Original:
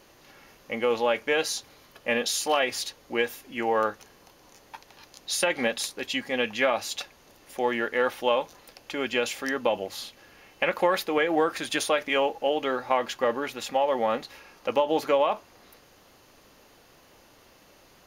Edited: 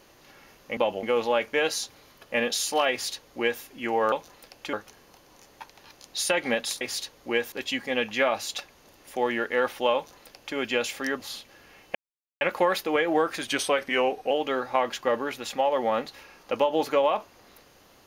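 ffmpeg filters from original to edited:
-filter_complex "[0:a]asplit=11[a][b][c][d][e][f][g][h][i][j][k];[a]atrim=end=0.772[l];[b]atrim=start=9.618:end=9.882[m];[c]atrim=start=0.768:end=3.862[n];[d]atrim=start=8.368:end=8.982[o];[e]atrim=start=3.858:end=5.942[p];[f]atrim=start=2.648:end=3.362[q];[g]atrim=start=5.938:end=9.622[r];[h]atrim=start=9.878:end=10.63,asetpts=PTS-STARTPTS,afade=t=out:st=0.748:d=0.004:c=hsin,apad=pad_dur=0.46[s];[i]atrim=start=10.63:end=11.694,asetpts=PTS-STARTPTS,afade=t=in:d=0.004:c=hsin[t];[j]atrim=start=11.69:end=12.47,asetpts=PTS-STARTPTS,asetrate=41013,aresample=44100,atrim=end_sample=36987,asetpts=PTS-STARTPTS[u];[k]atrim=start=12.466[v];[l][m]acrossfade=d=0.004:c1=hsin:c2=hsin[w];[w][n]acrossfade=d=0.004:c1=hsin:c2=hsin[x];[x][o]acrossfade=d=0.004:c1=hsin:c2=hsin[y];[y][p]acrossfade=d=0.004:c1=hsin:c2=hsin[z];[z][q]acrossfade=d=0.004:c1=hsin:c2=hsin[aa];[aa][r]acrossfade=d=0.004:c1=hsin:c2=hsin[ab];[s][t]concat=n=2:v=0:a=1[ac];[ab][ac]acrossfade=d=0.004:c1=hsin:c2=hsin[ad];[ad][u]acrossfade=d=0.004:c1=hsin:c2=hsin[ae];[ae][v]acrossfade=d=0.004:c1=hsin:c2=hsin"

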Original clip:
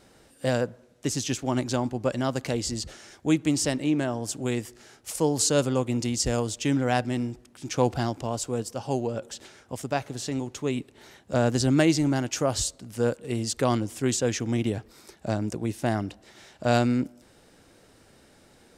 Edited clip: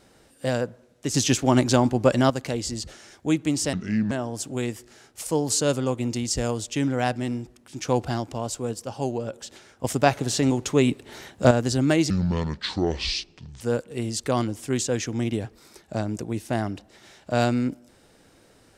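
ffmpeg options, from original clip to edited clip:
-filter_complex "[0:a]asplit=9[a][b][c][d][e][f][g][h][i];[a]atrim=end=1.142[j];[b]atrim=start=1.138:end=2.302,asetpts=PTS-STARTPTS,volume=7.5dB[k];[c]atrim=start=2.298:end=3.734[l];[d]atrim=start=3.73:end=4,asetpts=PTS-STARTPTS,asetrate=31311,aresample=44100,atrim=end_sample=16770,asetpts=PTS-STARTPTS[m];[e]atrim=start=3.996:end=9.732[n];[f]atrim=start=9.728:end=11.402,asetpts=PTS-STARTPTS,volume=8.5dB[o];[g]atrim=start=11.398:end=11.994[p];[h]atrim=start=11.99:end=12.94,asetpts=PTS-STARTPTS,asetrate=27783,aresample=44100[q];[i]atrim=start=12.936[r];[j][k]acrossfade=d=0.004:c1=hsin:c2=hsin[s];[s][l]acrossfade=d=0.004:c1=hsin:c2=hsin[t];[t][m]acrossfade=d=0.004:c1=hsin:c2=hsin[u];[u][n]acrossfade=d=0.004:c1=hsin:c2=hsin[v];[v][o]acrossfade=d=0.004:c1=hsin:c2=hsin[w];[w][p]acrossfade=d=0.004:c1=hsin:c2=hsin[x];[x][q]acrossfade=d=0.004:c1=hsin:c2=hsin[y];[y][r]acrossfade=d=0.004:c1=hsin:c2=hsin"

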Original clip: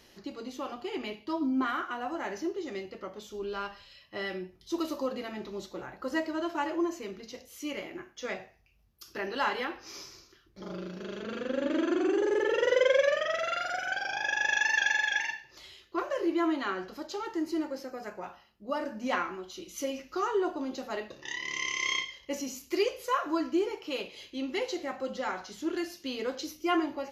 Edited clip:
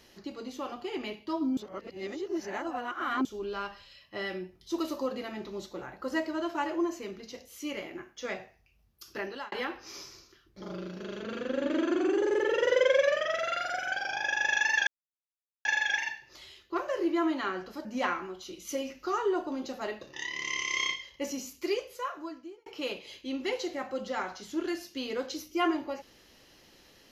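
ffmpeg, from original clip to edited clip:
-filter_complex "[0:a]asplit=7[a][b][c][d][e][f][g];[a]atrim=end=1.572[h];[b]atrim=start=1.568:end=3.252,asetpts=PTS-STARTPTS,areverse[i];[c]atrim=start=3.248:end=9.52,asetpts=PTS-STARTPTS,afade=t=out:st=5.942:d=0.33[j];[d]atrim=start=9.52:end=14.87,asetpts=PTS-STARTPTS,afade=t=in:d=0.004:c=hsin,afade=t=out:st=5.346:d=0.004:c=hsin,apad=pad_dur=0.78[k];[e]atrim=start=14.87:end=17.072,asetpts=PTS-STARTPTS,afade=t=in:d=0.004:c=hsin[l];[f]atrim=start=18.938:end=23.75,asetpts=PTS-STARTPTS,afade=t=out:st=3.512:d=1.3[m];[g]atrim=start=23.75,asetpts=PTS-STARTPTS,afade=t=in:d=0.004:c=hsin[n];[h][i]acrossfade=d=0.004:c1=hsin:c2=hsin[o];[j][k][l]concat=n=3:v=0:a=1[p];[o][p]acrossfade=d=0.004:c1=hsin:c2=hsin[q];[m][n]concat=n=2:v=0:a=1[r];[q][r]acrossfade=d=0.004:c1=hsin:c2=hsin"

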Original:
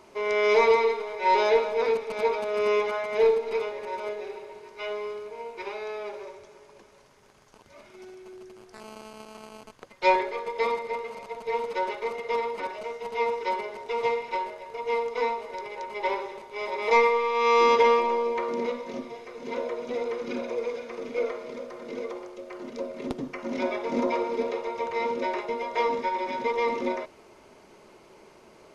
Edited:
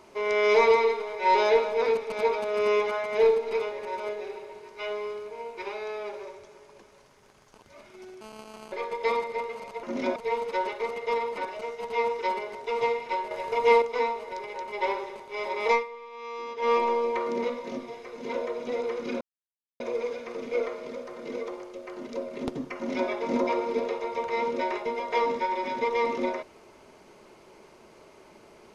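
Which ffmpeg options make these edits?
-filter_complex "[0:a]asplit=10[a][b][c][d][e][f][g][h][i][j];[a]atrim=end=8.212[k];[b]atrim=start=9.018:end=9.532[l];[c]atrim=start=10.268:end=11.382[m];[d]atrim=start=23.388:end=23.722[n];[e]atrim=start=11.378:end=14.532[o];[f]atrim=start=14.528:end=15.042,asetpts=PTS-STARTPTS,volume=8dB[p];[g]atrim=start=15.038:end=17.06,asetpts=PTS-STARTPTS,afade=t=out:st=1.862:d=0.16:silence=0.133352[q];[h]atrim=start=17.06:end=17.81,asetpts=PTS-STARTPTS,volume=-17.5dB[r];[i]atrim=start=17.81:end=20.43,asetpts=PTS-STARTPTS,afade=t=in:d=0.16:silence=0.133352,afade=t=out:st=2.616:d=0.004:c=hsin,apad=pad_dur=0.59[s];[j]atrim=start=20.43,asetpts=PTS-STARTPTS,afade=t=in:d=0.004:c=hsin[t];[k][l]acrossfade=d=0.004:c1=hsin:c2=hsin[u];[u][m]acrossfade=d=0.004:c1=hsin:c2=hsin[v];[v][n]acrossfade=d=0.004:c1=hsin:c2=hsin[w];[w][o]acrossfade=d=0.004:c1=hsin:c2=hsin[x];[x][p]acrossfade=d=0.004:c1=hsin:c2=hsin[y];[q][r][s][t]concat=n=4:v=0:a=1[z];[y][z]acrossfade=d=0.004:c1=hsin:c2=hsin"

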